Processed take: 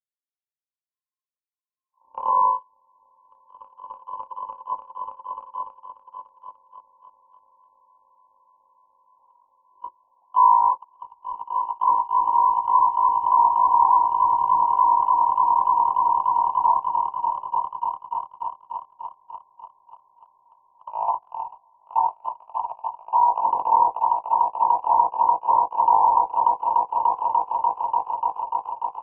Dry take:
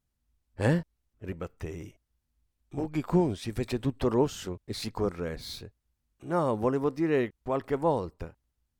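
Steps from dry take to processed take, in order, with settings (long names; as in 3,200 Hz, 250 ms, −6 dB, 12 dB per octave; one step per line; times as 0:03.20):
mu-law and A-law mismatch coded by A
low-pass that shuts in the quiet parts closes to 990 Hz, open at −22 dBFS
low-shelf EQ 370 Hz +4 dB
comb filter 5.8 ms, depth 60%
on a send: echo that builds up and dies away 89 ms, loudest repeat 8, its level −5 dB
on the sum: voice inversion scrambler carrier 3,500 Hz
dynamic equaliser 730 Hz, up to −6 dB, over −43 dBFS, Q 1.1
change of speed 0.303×
noise gate −18 dBFS, range −34 dB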